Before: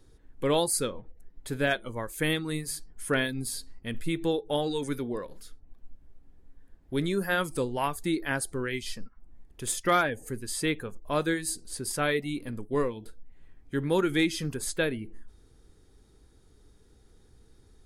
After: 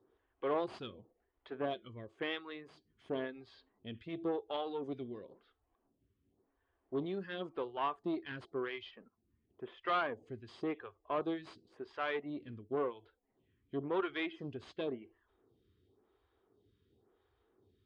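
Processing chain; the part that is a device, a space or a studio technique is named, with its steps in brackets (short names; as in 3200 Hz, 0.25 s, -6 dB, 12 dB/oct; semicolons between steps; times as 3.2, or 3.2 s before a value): 8.91–9.83 band shelf 6200 Hz -11 dB; vibe pedal into a guitar amplifier (photocell phaser 0.94 Hz; tube stage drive 24 dB, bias 0.5; speaker cabinet 95–3600 Hz, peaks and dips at 96 Hz +7 dB, 160 Hz -5 dB, 380 Hz +7 dB, 690 Hz +5 dB, 1100 Hz +8 dB, 3100 Hz +6 dB); gain -7 dB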